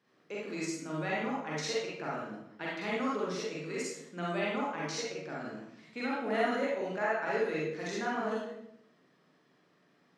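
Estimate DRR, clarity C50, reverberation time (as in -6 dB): -6.5 dB, -1.5 dB, 0.75 s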